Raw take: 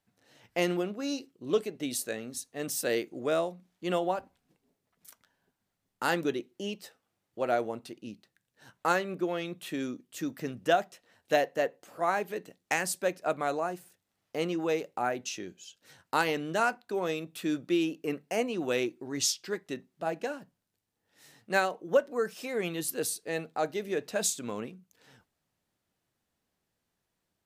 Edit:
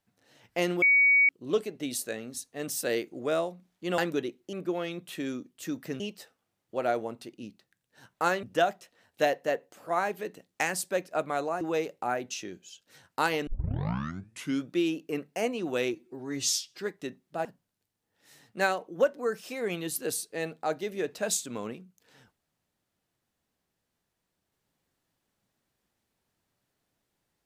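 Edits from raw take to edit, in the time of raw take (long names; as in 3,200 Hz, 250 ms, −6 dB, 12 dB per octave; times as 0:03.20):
0:00.82–0:01.29: beep over 2,250 Hz −17.5 dBFS
0:03.98–0:06.09: remove
0:09.07–0:10.54: move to 0:06.64
0:13.72–0:14.56: remove
0:16.42: tape start 1.21 s
0:18.89–0:19.45: time-stretch 1.5×
0:20.12–0:20.38: remove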